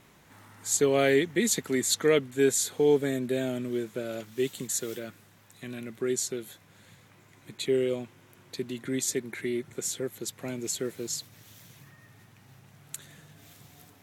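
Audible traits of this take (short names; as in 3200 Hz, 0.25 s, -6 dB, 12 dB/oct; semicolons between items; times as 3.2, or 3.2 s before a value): noise floor -58 dBFS; spectral tilt -3.5 dB/oct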